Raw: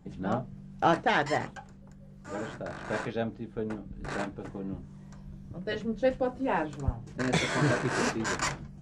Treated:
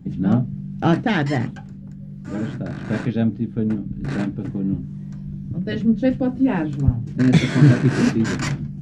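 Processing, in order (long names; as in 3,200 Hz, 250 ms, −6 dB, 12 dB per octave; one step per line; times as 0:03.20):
octave-band graphic EQ 125/250/500/1,000/8,000 Hz +10/+10/−4/−7/−6 dB
level +5.5 dB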